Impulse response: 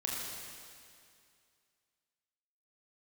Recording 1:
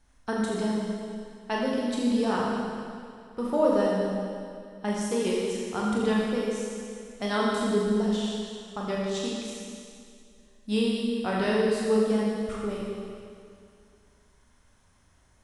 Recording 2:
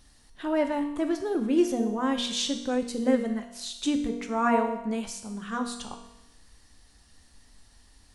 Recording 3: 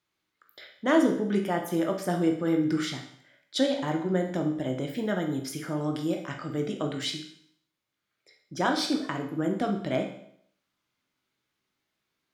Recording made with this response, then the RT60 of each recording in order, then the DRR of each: 1; 2.3, 0.95, 0.65 s; -4.5, 4.5, 2.5 dB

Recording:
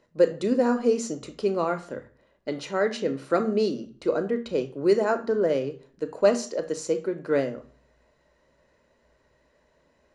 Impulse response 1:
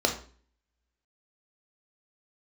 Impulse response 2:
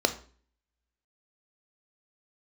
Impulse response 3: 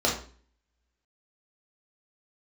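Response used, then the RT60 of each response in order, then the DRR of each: 2; 0.45, 0.45, 0.45 s; 2.5, 8.0, -3.5 dB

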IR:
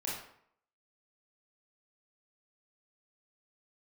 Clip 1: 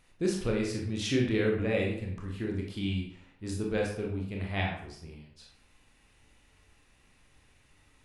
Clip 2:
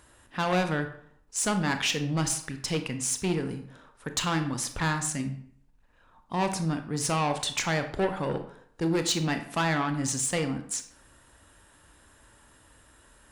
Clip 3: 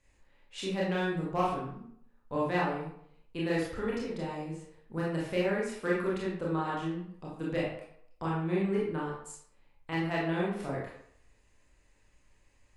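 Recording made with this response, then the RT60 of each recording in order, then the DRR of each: 3; 0.65, 0.65, 0.65 s; -1.0, 7.0, -6.0 dB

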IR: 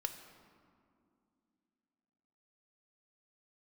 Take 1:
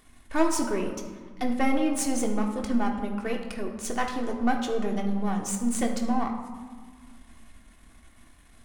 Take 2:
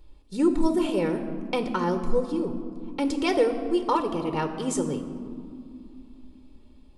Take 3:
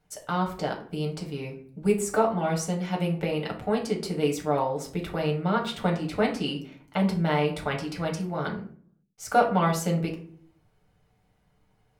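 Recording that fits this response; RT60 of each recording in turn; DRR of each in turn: 2; 1.6, 2.5, 0.50 s; 0.5, 7.0, -1.0 dB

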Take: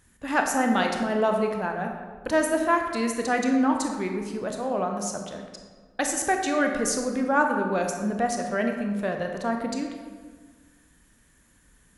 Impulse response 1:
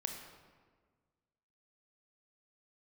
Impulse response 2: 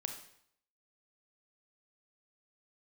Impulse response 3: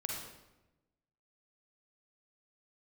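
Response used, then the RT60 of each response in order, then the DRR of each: 1; 1.6, 0.65, 1.0 s; 3.0, 4.5, -1.5 dB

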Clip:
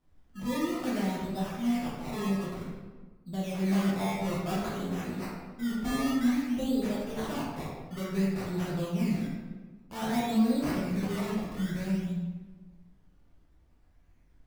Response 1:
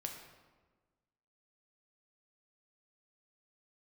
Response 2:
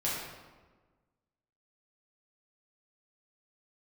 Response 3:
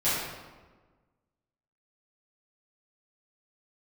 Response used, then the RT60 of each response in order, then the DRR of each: 2; 1.4, 1.4, 1.4 s; 2.0, -7.5, -14.0 dB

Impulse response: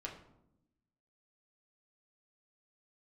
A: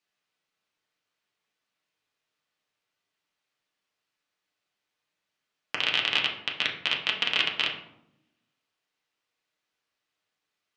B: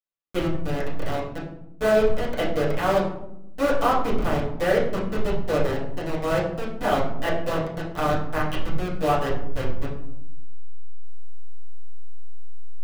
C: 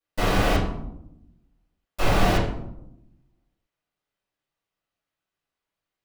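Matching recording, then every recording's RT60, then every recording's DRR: A; 0.80, 0.80, 0.80 s; -1.5, -10.5, -14.5 dB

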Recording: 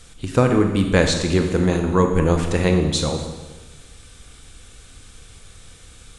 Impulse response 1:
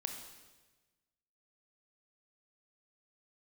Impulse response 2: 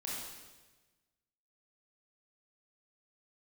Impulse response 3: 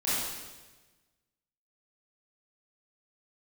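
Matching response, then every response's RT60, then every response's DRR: 1; 1.2, 1.2, 1.2 s; 4.0, -5.5, -11.5 dB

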